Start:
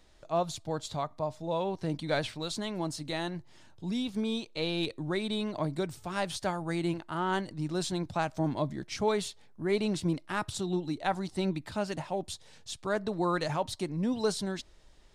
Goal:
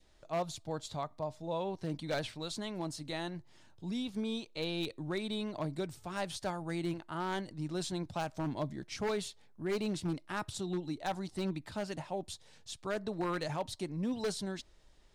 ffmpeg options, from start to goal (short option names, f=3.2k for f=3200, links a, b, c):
-af "adynamicequalizer=threshold=0.00631:dfrequency=1200:dqfactor=1.7:tfrequency=1200:tqfactor=1.7:attack=5:release=100:ratio=0.375:range=2:mode=cutabove:tftype=bell,aeval=exprs='0.075*(abs(mod(val(0)/0.075+3,4)-2)-1)':c=same,volume=-4.5dB"